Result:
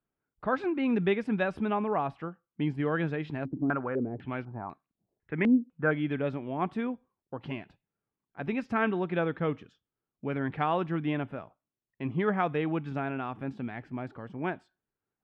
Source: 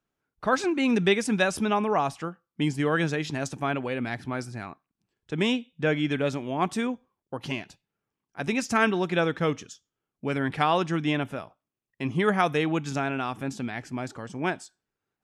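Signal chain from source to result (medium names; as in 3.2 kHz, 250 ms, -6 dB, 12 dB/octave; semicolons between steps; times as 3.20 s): distance through air 460 m; 3.45–5.91 s: step-sequenced low-pass 4 Hz 300–4300 Hz; trim -3 dB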